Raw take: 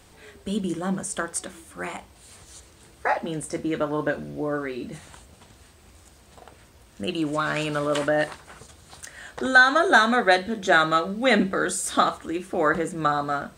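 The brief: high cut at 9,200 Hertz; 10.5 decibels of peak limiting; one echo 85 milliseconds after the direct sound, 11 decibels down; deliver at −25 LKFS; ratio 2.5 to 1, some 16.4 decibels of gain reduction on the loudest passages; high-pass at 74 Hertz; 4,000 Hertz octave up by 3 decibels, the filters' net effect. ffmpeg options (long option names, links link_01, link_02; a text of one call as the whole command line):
ffmpeg -i in.wav -af "highpass=74,lowpass=9200,equalizer=frequency=4000:width_type=o:gain=3.5,acompressor=threshold=-36dB:ratio=2.5,alimiter=level_in=3.5dB:limit=-24dB:level=0:latency=1,volume=-3.5dB,aecho=1:1:85:0.282,volume=13dB" out.wav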